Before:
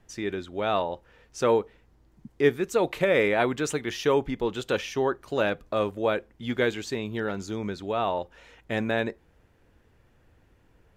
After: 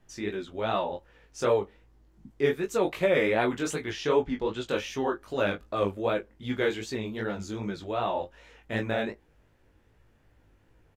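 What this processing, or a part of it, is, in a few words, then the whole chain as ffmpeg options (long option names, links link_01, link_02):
double-tracked vocal: -filter_complex "[0:a]asettb=1/sr,asplit=3[link_01][link_02][link_03];[link_01]atrim=end=3.904[link_04];[link_02]atrim=start=3.9:end=4.69,asetpts=PTS-STARTPTS,afade=type=in:duration=0.004:curve=qsin,afade=type=out:start_time=0.786:duration=0.004:curve=qsin,lowpass=7000[link_05];[link_03]atrim=start=4.686[link_06];[link_04][link_05]acrossfade=duration=0.004:curve1=hsin:curve2=qsin[link_07];[link_07][link_06]acrossfade=duration=0.004:curve1=qsin:curve2=hsin,asplit=2[link_08][link_09];[link_09]adelay=19,volume=-7dB[link_10];[link_08][link_10]amix=inputs=2:normalize=0,flanger=delay=15.5:depth=7.2:speed=2.6"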